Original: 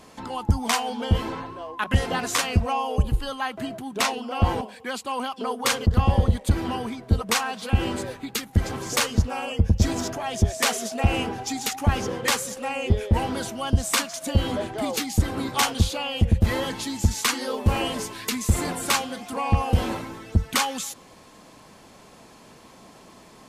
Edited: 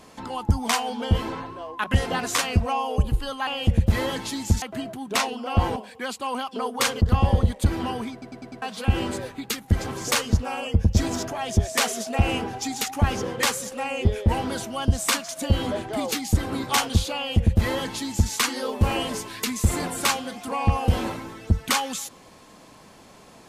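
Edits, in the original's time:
0:06.97: stutter in place 0.10 s, 5 plays
0:16.01–0:17.16: duplicate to 0:03.47

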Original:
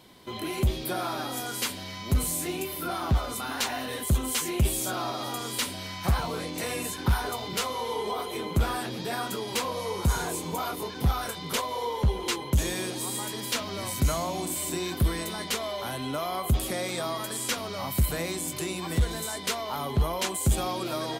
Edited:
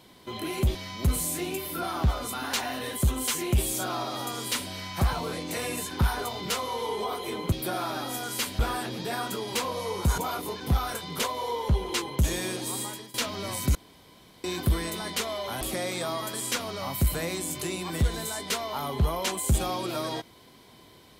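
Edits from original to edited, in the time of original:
0:00.75–0:01.82: move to 0:08.59
0:10.18–0:10.52: remove
0:13.13–0:13.48: fade out, to −20.5 dB
0:14.09–0:14.78: fill with room tone
0:15.95–0:16.58: remove

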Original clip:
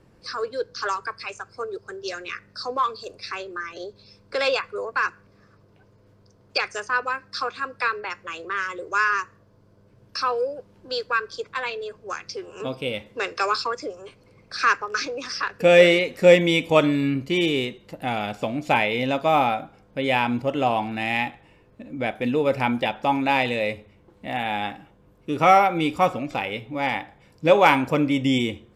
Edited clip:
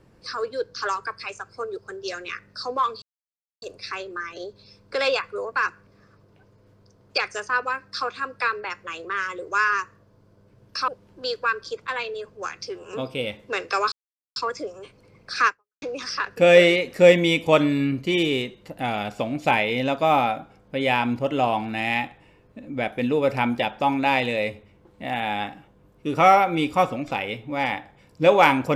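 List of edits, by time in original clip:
0:03.02: splice in silence 0.60 s
0:10.28–0:10.55: remove
0:13.59: splice in silence 0.44 s
0:14.70–0:15.05: fade out exponential

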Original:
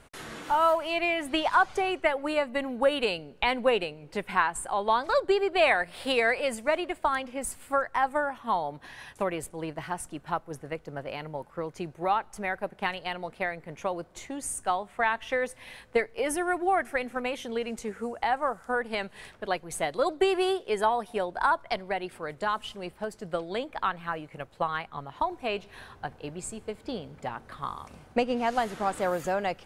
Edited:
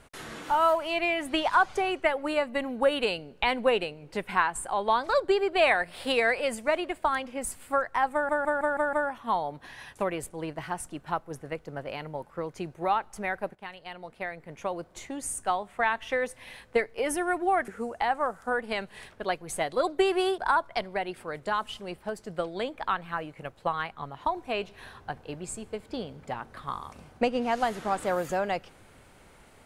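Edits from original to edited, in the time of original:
0:08.13: stutter 0.16 s, 6 plays
0:12.75–0:14.12: fade in, from −14 dB
0:16.88–0:17.90: remove
0:20.60–0:21.33: remove

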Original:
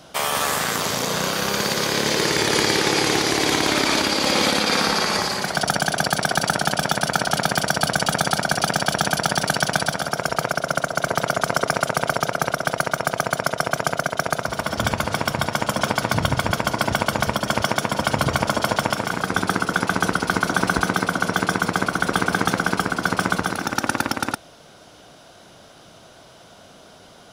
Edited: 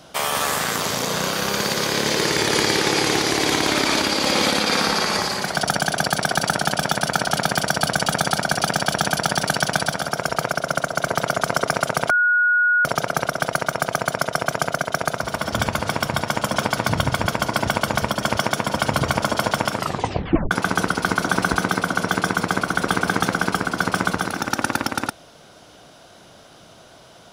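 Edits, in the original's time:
0:12.10: insert tone 1,450 Hz −14 dBFS 0.75 s
0:19.01: tape stop 0.75 s

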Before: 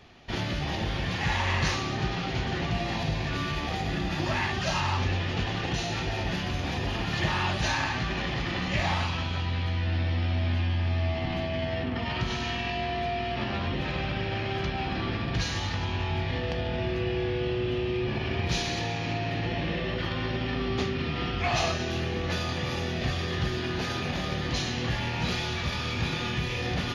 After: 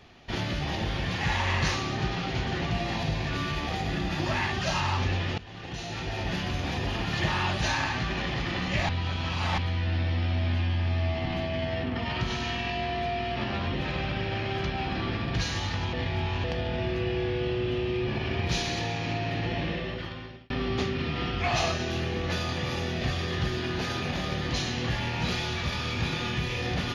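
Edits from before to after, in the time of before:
0:05.38–0:06.37: fade in, from −19.5 dB
0:08.89–0:09.58: reverse
0:15.93–0:16.44: reverse
0:19.62–0:20.50: fade out

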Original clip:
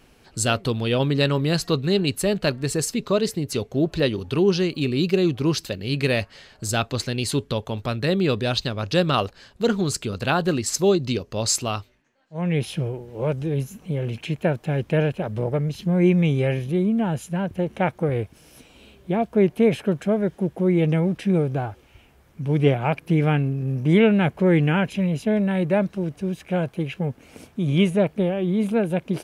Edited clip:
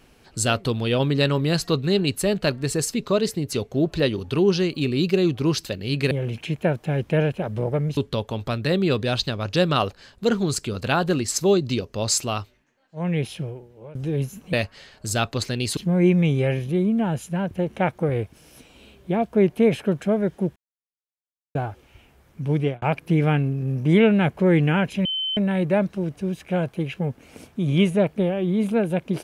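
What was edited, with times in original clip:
0:06.11–0:07.35: swap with 0:13.91–0:15.77
0:12.41–0:13.33: fade out, to −23 dB
0:20.56–0:21.55: silence
0:22.52–0:22.82: fade out
0:25.05–0:25.37: beep over 3,070 Hz −23 dBFS

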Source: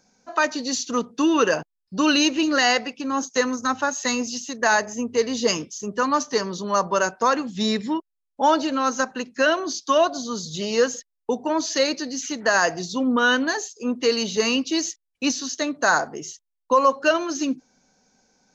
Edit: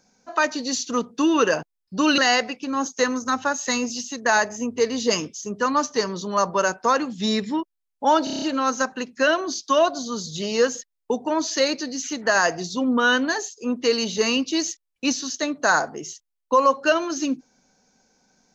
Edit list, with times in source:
0:02.18–0:02.55: remove
0:08.61: stutter 0.03 s, 7 plays

